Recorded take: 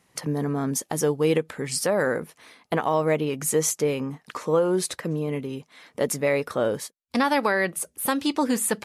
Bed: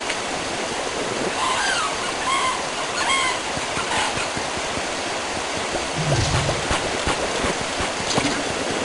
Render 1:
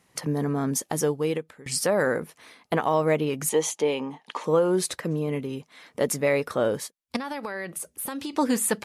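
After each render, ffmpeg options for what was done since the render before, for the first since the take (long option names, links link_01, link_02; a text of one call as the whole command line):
ffmpeg -i in.wav -filter_complex "[0:a]asettb=1/sr,asplit=3[link_01][link_02][link_03];[link_01]atrim=end=3.494[link_04];[link_02]atrim=start=3.49:end=4.44,asetpts=PTS-STARTPTS,afade=type=in:duration=0.004:curve=qsin,afade=type=out:start_time=0.946:duration=0.004:curve=qsin,highpass=250,equalizer=frequency=870:width_type=q:width=4:gain=10,equalizer=frequency=1400:width_type=q:width=4:gain=-7,equalizer=frequency=3200:width_type=q:width=4:gain=7,equalizer=frequency=5300:width_type=q:width=4:gain=-6,equalizer=frequency=8000:width_type=q:width=4:gain=-9,lowpass=frequency=9400:width=0.5412,lowpass=frequency=9400:width=1.3066[link_05];[link_03]atrim=start=4.436[link_06];[link_04][link_05]acrossfade=duration=0.004:curve1=hsin:curve2=qsin[link_07];[link_07][link_06]acrossfade=duration=0.004:curve1=qsin:curve2=hsin,asettb=1/sr,asplit=3[link_08][link_09][link_10];[link_08]atrim=end=7.164[link_11];[link_09]atrim=start=7.16:end=8.33,asetpts=PTS-STARTPTS,afade=type=in:duration=0.004:curve=qsin,afade=type=out:start_time=1.166:duration=0.004:curve=qsin,acompressor=threshold=-28dB:ratio=16:attack=3.2:release=140:knee=1:detection=peak[link_12];[link_10]atrim=start=8.326[link_13];[link_11][link_12]acrossfade=duration=0.004:curve1=hsin:curve2=qsin[link_14];[link_14][link_13]acrossfade=duration=0.004:curve1=qsin:curve2=hsin,asplit=2[link_15][link_16];[link_15]atrim=end=1.66,asetpts=PTS-STARTPTS,afade=type=out:start_time=0.94:duration=0.72:silence=0.0944061[link_17];[link_16]atrim=start=1.66,asetpts=PTS-STARTPTS,afade=type=in:duration=0.004:curve=hsin:silence=0.0944061[link_18];[link_17][link_18]concat=n=2:v=0:a=1" out.wav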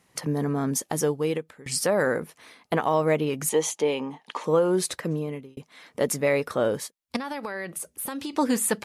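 ffmpeg -i in.wav -filter_complex "[0:a]asplit=2[link_01][link_02];[link_01]atrim=end=5.57,asetpts=PTS-STARTPTS,afade=type=out:start_time=5.12:duration=0.45[link_03];[link_02]atrim=start=5.57,asetpts=PTS-STARTPTS,afade=type=in:duration=0.004:curve=hsin[link_04];[link_03][link_04]concat=n=2:v=0:a=1" out.wav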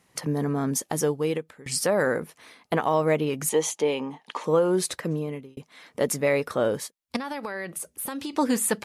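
ffmpeg -i in.wav -af anull out.wav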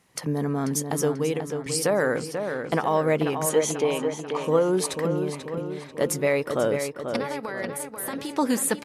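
ffmpeg -i in.wav -filter_complex "[0:a]asplit=2[link_01][link_02];[link_02]adelay=489,lowpass=frequency=3800:poles=1,volume=-6.5dB,asplit=2[link_03][link_04];[link_04]adelay=489,lowpass=frequency=3800:poles=1,volume=0.54,asplit=2[link_05][link_06];[link_06]adelay=489,lowpass=frequency=3800:poles=1,volume=0.54,asplit=2[link_07][link_08];[link_08]adelay=489,lowpass=frequency=3800:poles=1,volume=0.54,asplit=2[link_09][link_10];[link_10]adelay=489,lowpass=frequency=3800:poles=1,volume=0.54,asplit=2[link_11][link_12];[link_12]adelay=489,lowpass=frequency=3800:poles=1,volume=0.54,asplit=2[link_13][link_14];[link_14]adelay=489,lowpass=frequency=3800:poles=1,volume=0.54[link_15];[link_01][link_03][link_05][link_07][link_09][link_11][link_13][link_15]amix=inputs=8:normalize=0" out.wav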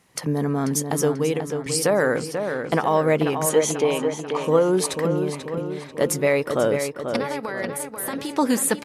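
ffmpeg -i in.wav -af "volume=3dB" out.wav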